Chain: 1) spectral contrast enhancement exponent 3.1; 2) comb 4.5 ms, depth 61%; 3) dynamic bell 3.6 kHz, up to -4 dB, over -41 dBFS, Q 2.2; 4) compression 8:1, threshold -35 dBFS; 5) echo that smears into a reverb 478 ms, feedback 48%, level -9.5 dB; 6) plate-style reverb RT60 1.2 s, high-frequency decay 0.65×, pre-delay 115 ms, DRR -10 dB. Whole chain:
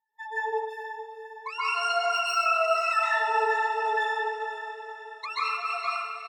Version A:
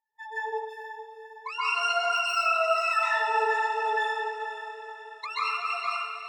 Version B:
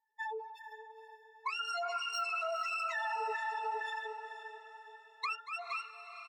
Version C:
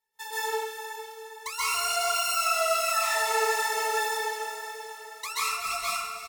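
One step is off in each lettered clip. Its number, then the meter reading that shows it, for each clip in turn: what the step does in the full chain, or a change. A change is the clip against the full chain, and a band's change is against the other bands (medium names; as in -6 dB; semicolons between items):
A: 2, momentary loudness spread change +2 LU; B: 6, momentary loudness spread change +3 LU; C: 1, 8 kHz band +17.5 dB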